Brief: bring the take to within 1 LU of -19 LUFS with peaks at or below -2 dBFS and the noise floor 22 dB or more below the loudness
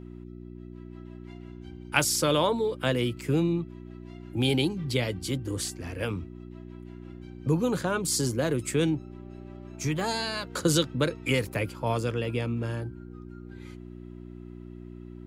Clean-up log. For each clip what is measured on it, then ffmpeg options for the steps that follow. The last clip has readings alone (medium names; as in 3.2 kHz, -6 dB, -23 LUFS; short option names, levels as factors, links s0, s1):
hum 60 Hz; highest harmonic 360 Hz; hum level -42 dBFS; loudness -28.0 LUFS; peak level -7.0 dBFS; loudness target -19.0 LUFS
-> -af "bandreject=f=60:t=h:w=4,bandreject=f=120:t=h:w=4,bandreject=f=180:t=h:w=4,bandreject=f=240:t=h:w=4,bandreject=f=300:t=h:w=4,bandreject=f=360:t=h:w=4"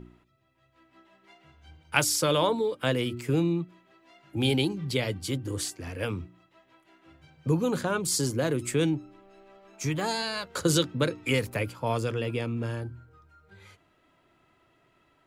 hum not found; loudness -28.5 LUFS; peak level -7.5 dBFS; loudness target -19.0 LUFS
-> -af "volume=2.99,alimiter=limit=0.794:level=0:latency=1"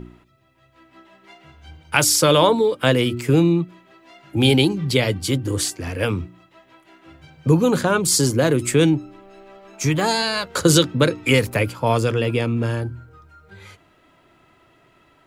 loudness -19.0 LUFS; peak level -2.0 dBFS; noise floor -57 dBFS